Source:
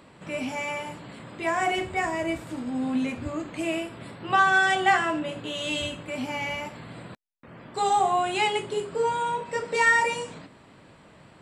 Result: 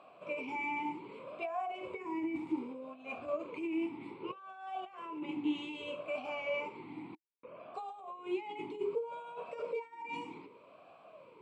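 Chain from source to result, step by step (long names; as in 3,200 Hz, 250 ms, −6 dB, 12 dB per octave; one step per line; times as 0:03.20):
compressor whose output falls as the input rises −32 dBFS, ratio −1
formant filter swept between two vowels a-u 0.64 Hz
level +2 dB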